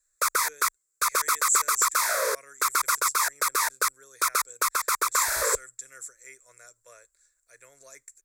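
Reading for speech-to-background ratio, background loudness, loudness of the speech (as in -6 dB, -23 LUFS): -5.5 dB, -25.0 LUFS, -30.5 LUFS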